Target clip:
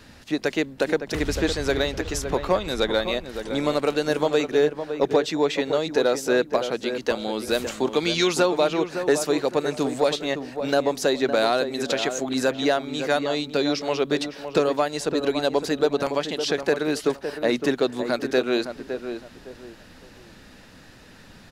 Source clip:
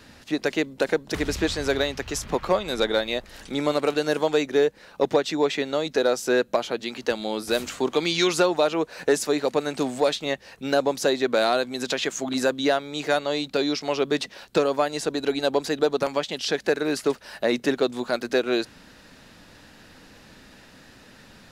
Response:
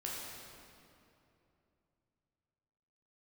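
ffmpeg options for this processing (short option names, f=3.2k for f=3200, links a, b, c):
-filter_complex "[0:a]lowshelf=f=110:g=5,asplit=2[a][b];[b]adelay=561,lowpass=f=1.5k:p=1,volume=-8dB,asplit=2[c][d];[d]adelay=561,lowpass=f=1.5k:p=1,volume=0.29,asplit=2[e][f];[f]adelay=561,lowpass=f=1.5k:p=1,volume=0.29[g];[c][e][g]amix=inputs=3:normalize=0[h];[a][h]amix=inputs=2:normalize=0"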